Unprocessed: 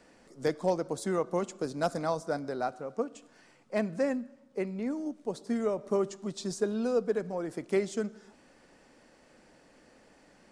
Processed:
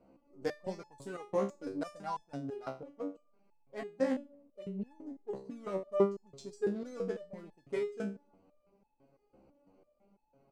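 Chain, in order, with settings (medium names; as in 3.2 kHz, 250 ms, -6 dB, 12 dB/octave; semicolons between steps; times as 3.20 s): local Wiener filter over 25 samples; 2.08–4.01 s: transient shaper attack -7 dB, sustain -1 dB; resonator arpeggio 6 Hz 66–860 Hz; trim +6 dB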